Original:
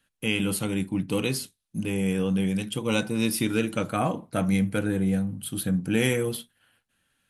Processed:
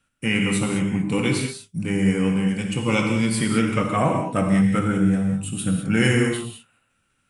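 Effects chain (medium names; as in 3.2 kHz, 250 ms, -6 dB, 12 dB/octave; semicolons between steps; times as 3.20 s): dynamic bell 1.4 kHz, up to +6 dB, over -42 dBFS, Q 0.74; formant shift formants -2 st; bass shelf 350 Hz +4.5 dB; gated-style reverb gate 230 ms flat, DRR 2 dB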